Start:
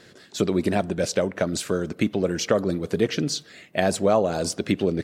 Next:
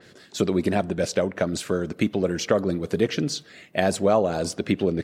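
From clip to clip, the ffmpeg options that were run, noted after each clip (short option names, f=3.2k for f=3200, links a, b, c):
-af "adynamicequalizer=threshold=0.00794:dfrequency=3900:dqfactor=0.7:tfrequency=3900:tqfactor=0.7:attack=5:release=100:ratio=0.375:range=2.5:mode=cutabove:tftype=highshelf"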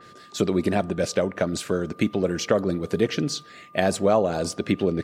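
-af "aeval=exprs='val(0)+0.00398*sin(2*PI*1200*n/s)':c=same"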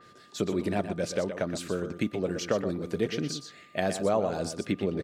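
-af "aecho=1:1:122:0.335,volume=-6.5dB"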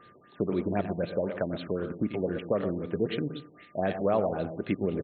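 -af "aecho=1:1:92|184|276|368:0.2|0.0778|0.0303|0.0118,afftfilt=real='re*lt(b*sr/1024,960*pow(4400/960,0.5+0.5*sin(2*PI*3.9*pts/sr)))':imag='im*lt(b*sr/1024,960*pow(4400/960,0.5+0.5*sin(2*PI*3.9*pts/sr)))':win_size=1024:overlap=0.75"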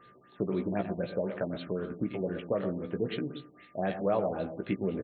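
-filter_complex "[0:a]asplit=2[a][b];[b]adelay=16,volume=-6.5dB[c];[a][c]amix=inputs=2:normalize=0,volume=-3.5dB"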